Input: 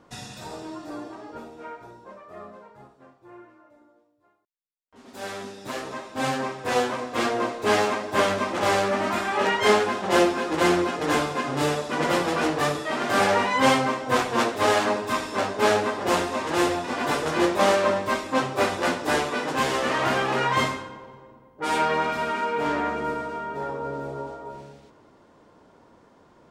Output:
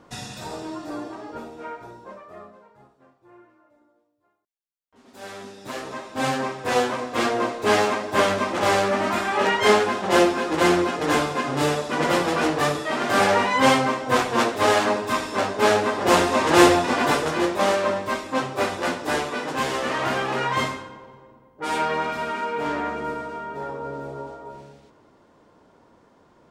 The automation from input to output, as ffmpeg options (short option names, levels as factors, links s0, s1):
-af "volume=7.08,afade=t=out:st=2.13:d=0.4:silence=0.398107,afade=t=in:st=5.2:d=0.99:silence=0.473151,afade=t=in:st=15.81:d=0.84:silence=0.446684,afade=t=out:st=16.65:d=0.76:silence=0.316228"